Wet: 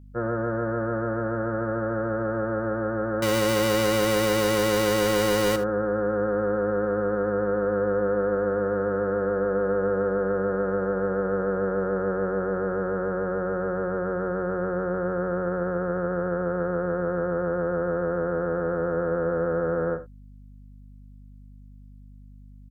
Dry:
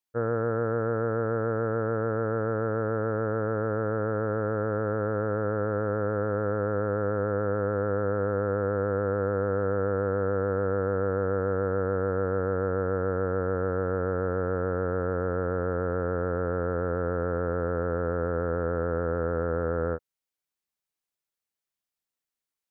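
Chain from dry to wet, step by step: 3.22–5.56 half-waves squared off; comb 5.6 ms, depth 86%; early reflections 62 ms -15.5 dB, 78 ms -16.5 dB; hum 50 Hz, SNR 21 dB

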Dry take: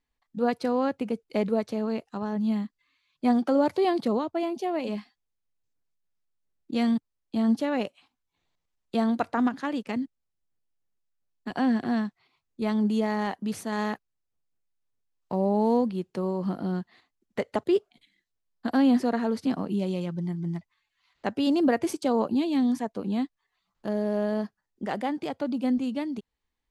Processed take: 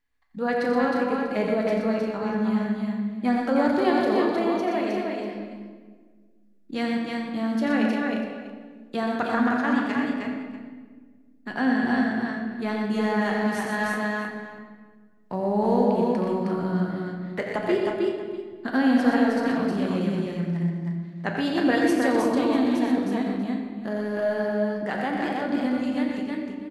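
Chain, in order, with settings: bell 1700 Hz +8 dB 0.8 oct; tapped delay 87/122/313/348/643 ms -9/-6.5/-3/-9.5/-18 dB; on a send at -2 dB: reverb RT60 1.5 s, pre-delay 11 ms; on the sum: gain -2 dB

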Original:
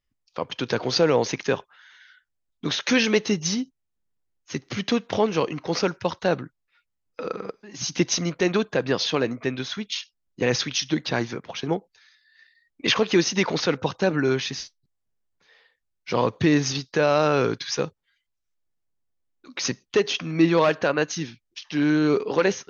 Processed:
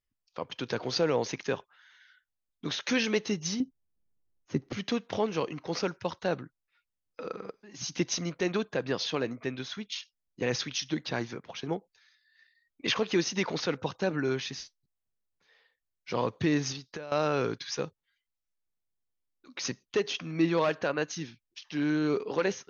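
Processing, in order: 3.6–4.73 tilt shelf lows +9 dB, about 1300 Hz; 16.72–17.12 compressor 10:1, threshold -30 dBFS, peak gain reduction 15 dB; gain -7.5 dB

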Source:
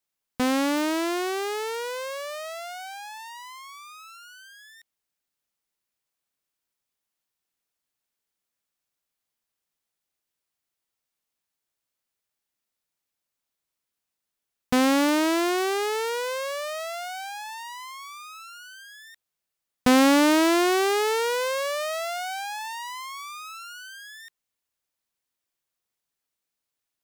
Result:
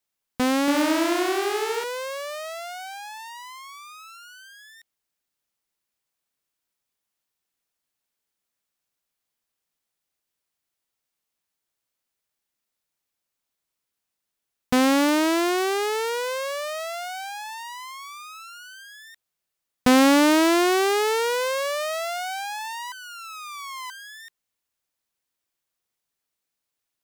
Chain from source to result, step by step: 0.61–1.84 flutter echo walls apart 11.5 m, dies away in 1 s; 22.92–23.9 reverse; gain +1.5 dB

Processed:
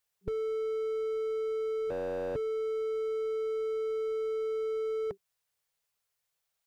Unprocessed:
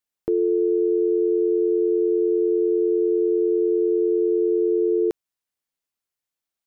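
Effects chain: 1.9–2.36 ring modulator 130 Hz; FFT band-reject 190–390 Hz; slew limiter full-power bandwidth 7 Hz; gain +4.5 dB

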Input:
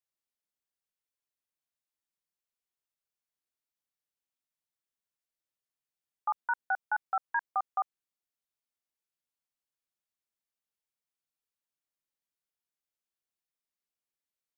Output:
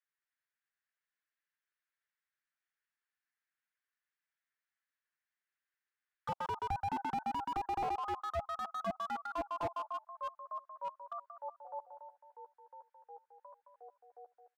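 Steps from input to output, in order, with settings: on a send: thinning echo 0.129 s, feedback 24%, high-pass 620 Hz, level -6 dB; on the sum: frequency shift +32 Hz; comb 7.5 ms, depth 55%; echoes that change speed 0.365 s, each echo -3 st, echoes 3, each echo -6 dB; auto-wah 760–1700 Hz, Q 3.7, down, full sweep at -28.5 dBFS; slew limiter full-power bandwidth 6.5 Hz; gain +8.5 dB

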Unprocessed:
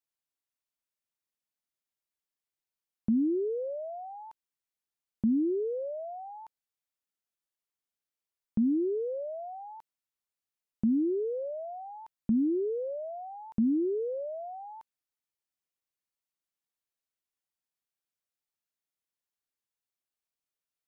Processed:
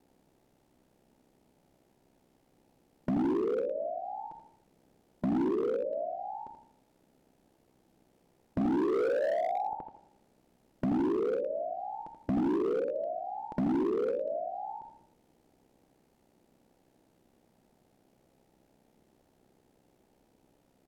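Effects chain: per-bin compression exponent 0.6; bell 560 Hz -5 dB 1.8 oct, from 8.61 s +10 dB, from 9.73 s -4.5 dB; shoebox room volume 2000 m³, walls furnished, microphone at 0.63 m; dynamic EQ 210 Hz, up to +4 dB, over -37 dBFS, Q 0.76; compressor 16:1, threshold -28 dBFS, peak gain reduction 14 dB; treble ducked by the level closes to 650 Hz, closed at -32.5 dBFS; ring modulator 32 Hz; feedback echo 82 ms, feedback 34%, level -8 dB; hard clip -34 dBFS, distortion -9 dB; gain +8.5 dB

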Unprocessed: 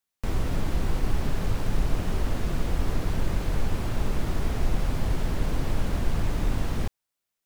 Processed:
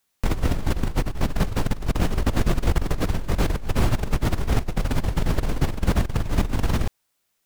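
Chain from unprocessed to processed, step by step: negative-ratio compressor -27 dBFS, ratio -0.5; gain +6.5 dB

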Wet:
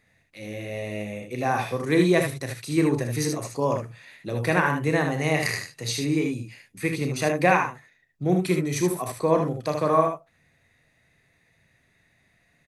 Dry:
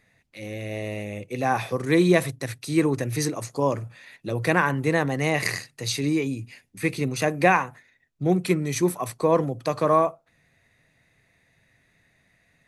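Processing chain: early reflections 33 ms -9.5 dB, 63 ms -10.5 dB, 76 ms -6 dB; gain -2 dB

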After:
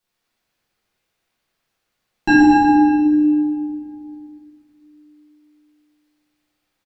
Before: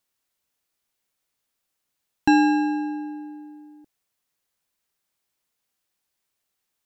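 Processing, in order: feedback echo 0.12 s, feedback 55%, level -5.5 dB; reverb RT60 2.1 s, pre-delay 5 ms, DRR -11.5 dB; gain -3 dB

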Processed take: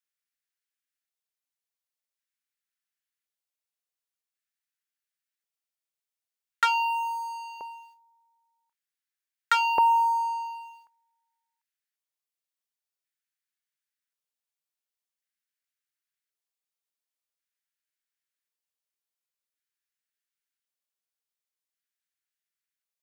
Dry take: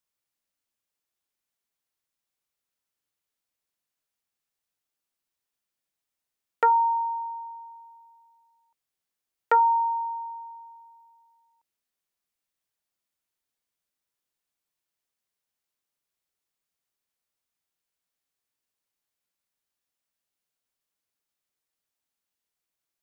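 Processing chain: tilt shelf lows -9 dB, about 670 Hz; sample leveller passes 3; LFO high-pass square 0.46 Hz 450–1600 Hz; gain -8.5 dB

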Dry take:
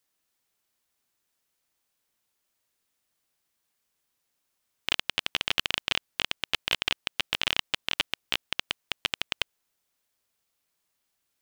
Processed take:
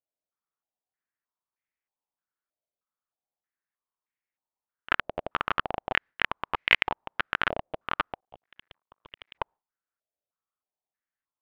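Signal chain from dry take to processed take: 8.2–9.35 CVSD 32 kbps; gate with hold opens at -37 dBFS; in parallel at -2 dB: limiter -14.5 dBFS, peak gain reduction 9.5 dB; on the sum: vibrato 3.8 Hz 52 cents; stepped low-pass 3.2 Hz 640–2100 Hz

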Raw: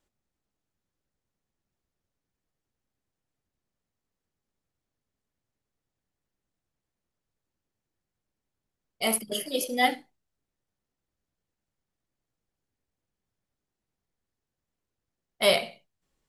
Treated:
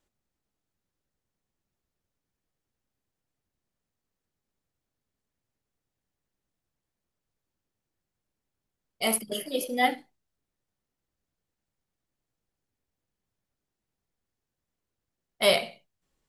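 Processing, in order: 9.17–9.98 dynamic EQ 6400 Hz, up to -7 dB, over -45 dBFS, Q 0.75

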